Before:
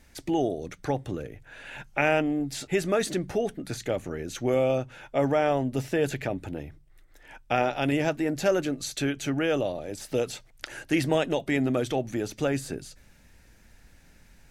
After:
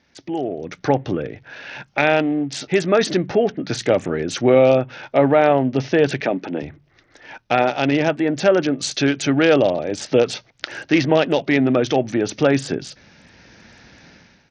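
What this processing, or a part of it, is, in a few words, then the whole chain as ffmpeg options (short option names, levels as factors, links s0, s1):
Bluetooth headset: -filter_complex "[0:a]asettb=1/sr,asplit=3[s0][s1][s2];[s0]atrim=end=6.204[s3];[s1]atrim=start=6.2:end=6.62,asetpts=PTS-STARTPTS,afade=t=in:d=0.004:c=qsin,afade=t=out:st=0.416:d=0.004:c=qsin,highpass=f=180:w=0.5412,highpass=f=180:w=1.3066[s4];[s2]atrim=start=6.616[s5];[s3][s4]acrossfade=d=0.004:c1=hsin:c2=qsin[s6];[s6][s5]acrossfade=d=0.004:c1=qsin:c2=hsin,highpass=130,dynaudnorm=f=440:g=3:m=6.31,aresample=16000,aresample=44100,volume=0.891" -ar 48000 -c:a sbc -b:a 64k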